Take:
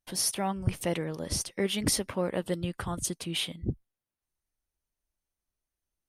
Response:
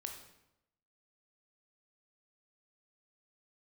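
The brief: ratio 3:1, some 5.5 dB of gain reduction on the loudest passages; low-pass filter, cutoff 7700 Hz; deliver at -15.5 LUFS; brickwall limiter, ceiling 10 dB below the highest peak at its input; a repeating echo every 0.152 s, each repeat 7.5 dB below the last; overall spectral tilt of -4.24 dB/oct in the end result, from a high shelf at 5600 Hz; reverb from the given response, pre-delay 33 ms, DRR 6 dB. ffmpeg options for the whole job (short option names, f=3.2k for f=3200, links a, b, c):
-filter_complex "[0:a]lowpass=7.7k,highshelf=f=5.6k:g=-5.5,acompressor=threshold=-30dB:ratio=3,alimiter=level_in=5.5dB:limit=-24dB:level=0:latency=1,volume=-5.5dB,aecho=1:1:152|304|456|608|760:0.422|0.177|0.0744|0.0312|0.0131,asplit=2[a][b];[1:a]atrim=start_sample=2205,adelay=33[c];[b][c]afir=irnorm=-1:irlink=0,volume=-3.5dB[d];[a][d]amix=inputs=2:normalize=0,volume=22.5dB"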